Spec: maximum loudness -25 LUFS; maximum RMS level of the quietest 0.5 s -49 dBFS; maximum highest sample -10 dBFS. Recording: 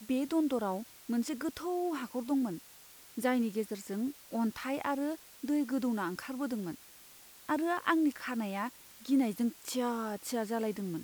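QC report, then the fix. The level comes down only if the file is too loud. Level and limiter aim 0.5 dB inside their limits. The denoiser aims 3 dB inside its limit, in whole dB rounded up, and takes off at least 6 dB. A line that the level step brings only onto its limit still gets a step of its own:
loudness -34.0 LUFS: OK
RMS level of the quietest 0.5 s -56 dBFS: OK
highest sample -14.0 dBFS: OK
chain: none

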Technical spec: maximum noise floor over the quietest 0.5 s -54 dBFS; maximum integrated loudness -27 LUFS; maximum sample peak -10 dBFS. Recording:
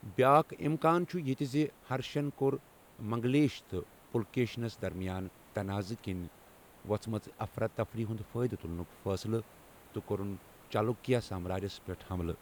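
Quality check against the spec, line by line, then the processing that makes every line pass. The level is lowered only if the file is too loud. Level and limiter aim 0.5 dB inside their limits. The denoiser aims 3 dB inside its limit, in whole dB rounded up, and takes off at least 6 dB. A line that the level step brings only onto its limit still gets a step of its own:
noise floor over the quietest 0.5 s -58 dBFS: OK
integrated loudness -34.5 LUFS: OK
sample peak -13.0 dBFS: OK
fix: none

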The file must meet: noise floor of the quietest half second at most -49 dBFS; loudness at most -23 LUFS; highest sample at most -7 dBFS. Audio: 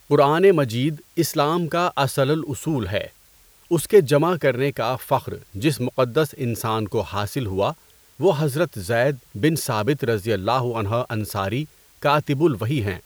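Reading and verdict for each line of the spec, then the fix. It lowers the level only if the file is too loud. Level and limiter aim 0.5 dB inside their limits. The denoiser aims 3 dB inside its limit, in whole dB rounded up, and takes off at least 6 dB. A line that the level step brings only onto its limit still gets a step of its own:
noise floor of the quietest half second -54 dBFS: OK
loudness -21.5 LUFS: fail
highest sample -4.0 dBFS: fail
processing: gain -2 dB; limiter -7.5 dBFS

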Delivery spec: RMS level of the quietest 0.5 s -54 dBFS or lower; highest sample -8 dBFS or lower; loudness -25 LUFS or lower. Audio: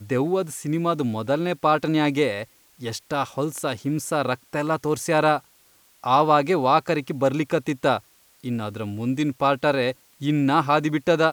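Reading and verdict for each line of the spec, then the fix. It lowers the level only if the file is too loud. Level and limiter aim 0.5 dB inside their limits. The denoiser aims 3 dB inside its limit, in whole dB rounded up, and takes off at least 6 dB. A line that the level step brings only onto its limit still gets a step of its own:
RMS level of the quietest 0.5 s -58 dBFS: OK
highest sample -5.0 dBFS: fail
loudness -23.0 LUFS: fail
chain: gain -2.5 dB; limiter -8.5 dBFS

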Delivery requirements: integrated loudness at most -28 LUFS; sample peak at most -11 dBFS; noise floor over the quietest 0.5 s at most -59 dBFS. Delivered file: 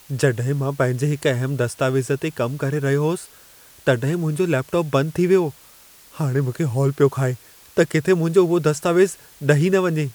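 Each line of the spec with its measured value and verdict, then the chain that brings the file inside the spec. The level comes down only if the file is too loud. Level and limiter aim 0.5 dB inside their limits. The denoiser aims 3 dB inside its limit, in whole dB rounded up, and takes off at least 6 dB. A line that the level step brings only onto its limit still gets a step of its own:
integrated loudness -20.5 LUFS: fail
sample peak -4.0 dBFS: fail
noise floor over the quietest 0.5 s -48 dBFS: fail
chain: denoiser 6 dB, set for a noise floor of -48 dBFS; gain -8 dB

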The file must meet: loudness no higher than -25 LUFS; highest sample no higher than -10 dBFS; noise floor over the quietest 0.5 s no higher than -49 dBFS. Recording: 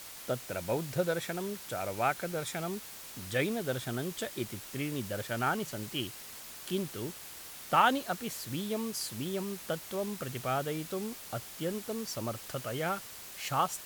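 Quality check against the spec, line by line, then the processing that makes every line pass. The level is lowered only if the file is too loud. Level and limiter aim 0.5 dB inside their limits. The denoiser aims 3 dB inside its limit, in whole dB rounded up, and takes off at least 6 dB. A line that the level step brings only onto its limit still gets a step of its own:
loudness -34.5 LUFS: OK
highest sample -11.5 dBFS: OK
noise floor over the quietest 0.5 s -47 dBFS: fail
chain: denoiser 6 dB, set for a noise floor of -47 dBFS

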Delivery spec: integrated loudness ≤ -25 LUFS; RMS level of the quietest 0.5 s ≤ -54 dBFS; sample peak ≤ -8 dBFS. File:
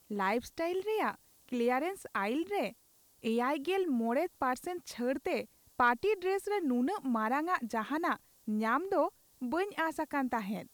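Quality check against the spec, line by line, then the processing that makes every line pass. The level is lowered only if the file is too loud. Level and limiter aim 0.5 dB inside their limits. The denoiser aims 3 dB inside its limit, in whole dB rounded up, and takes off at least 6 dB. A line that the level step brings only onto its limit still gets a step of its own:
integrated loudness -33.5 LUFS: OK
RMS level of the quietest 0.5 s -66 dBFS: OK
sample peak -16.5 dBFS: OK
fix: none

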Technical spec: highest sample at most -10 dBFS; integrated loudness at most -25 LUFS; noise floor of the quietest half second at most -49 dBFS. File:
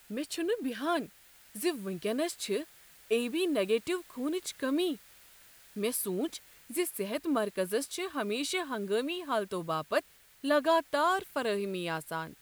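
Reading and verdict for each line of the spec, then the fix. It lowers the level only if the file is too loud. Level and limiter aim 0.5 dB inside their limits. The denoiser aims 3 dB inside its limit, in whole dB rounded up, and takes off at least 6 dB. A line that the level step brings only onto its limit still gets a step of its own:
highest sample -15.0 dBFS: OK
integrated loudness -32.5 LUFS: OK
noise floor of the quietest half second -57 dBFS: OK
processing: none

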